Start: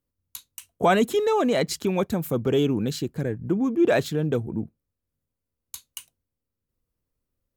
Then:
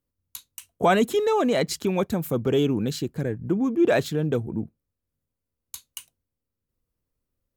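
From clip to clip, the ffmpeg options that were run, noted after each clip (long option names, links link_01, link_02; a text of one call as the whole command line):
ffmpeg -i in.wav -af anull out.wav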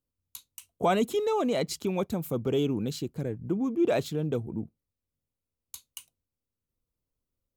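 ffmpeg -i in.wav -af "equalizer=frequency=1700:width_type=o:width=0.37:gain=-8,volume=-5dB" out.wav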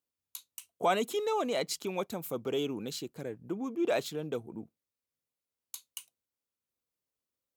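ffmpeg -i in.wav -af "highpass=frequency=590:poles=1" out.wav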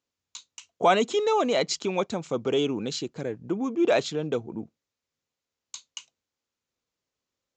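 ffmpeg -i in.wav -af "aresample=16000,aresample=44100,volume=7.5dB" out.wav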